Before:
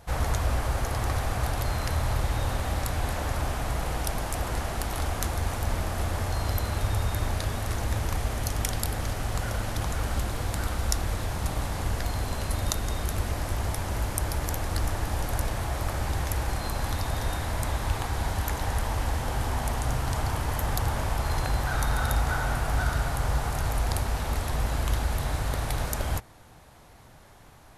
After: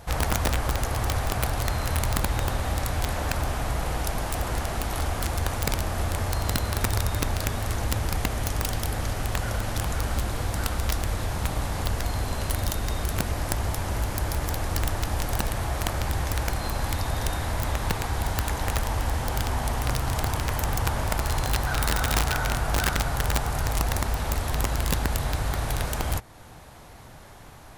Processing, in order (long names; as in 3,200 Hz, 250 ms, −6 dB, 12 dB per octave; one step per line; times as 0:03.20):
in parallel at −0.5 dB: downward compressor 16 to 1, threshold −38 dBFS, peak gain reduction 19 dB
on the sum: wrap-around overflow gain 16.5 dB